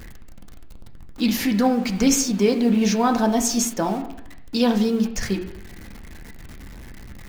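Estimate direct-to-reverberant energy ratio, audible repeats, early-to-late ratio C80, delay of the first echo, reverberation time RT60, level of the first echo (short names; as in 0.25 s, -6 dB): 3.0 dB, none, 12.5 dB, none, 0.85 s, none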